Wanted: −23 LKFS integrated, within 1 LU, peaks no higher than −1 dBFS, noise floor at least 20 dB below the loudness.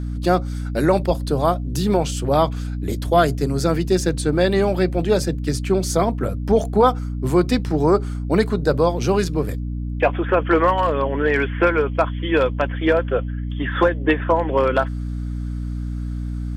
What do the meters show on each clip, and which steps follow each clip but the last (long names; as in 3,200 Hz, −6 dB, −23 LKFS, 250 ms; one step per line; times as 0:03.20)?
mains hum 60 Hz; hum harmonics up to 300 Hz; level of the hum −23 dBFS; integrated loudness −20.5 LKFS; sample peak −5.5 dBFS; target loudness −23.0 LKFS
→ hum removal 60 Hz, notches 5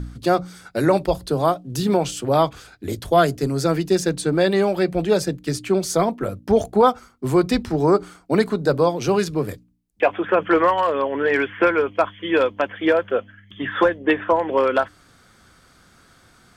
mains hum none found; integrated loudness −20.5 LKFS; sample peak −6.5 dBFS; target loudness −23.0 LKFS
→ level −2.5 dB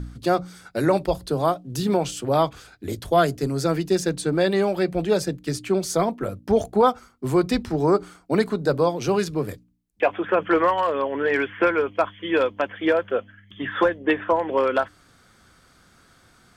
integrated loudness −23.0 LKFS; sample peak −9.0 dBFS; background noise floor −57 dBFS